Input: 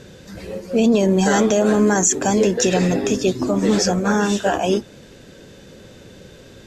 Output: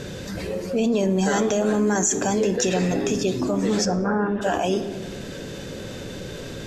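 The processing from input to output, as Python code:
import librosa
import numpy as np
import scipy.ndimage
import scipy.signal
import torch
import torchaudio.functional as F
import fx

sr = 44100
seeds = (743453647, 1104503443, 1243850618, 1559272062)

y = fx.lowpass(x, sr, hz=1600.0, slope=24, at=(3.84, 4.41), fade=0.02)
y = fx.room_shoebox(y, sr, seeds[0], volume_m3=500.0, walls='mixed', distance_m=0.31)
y = fx.env_flatten(y, sr, amount_pct=50)
y = F.gain(torch.from_numpy(y), -7.0).numpy()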